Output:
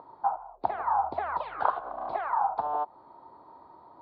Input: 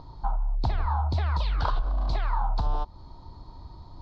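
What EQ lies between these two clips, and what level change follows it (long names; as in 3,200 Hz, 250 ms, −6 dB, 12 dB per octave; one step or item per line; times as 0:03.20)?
dynamic equaliser 750 Hz, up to +6 dB, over −49 dBFS, Q 4
flat-topped band-pass 860 Hz, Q 0.61
high-frequency loss of the air 120 metres
+3.5 dB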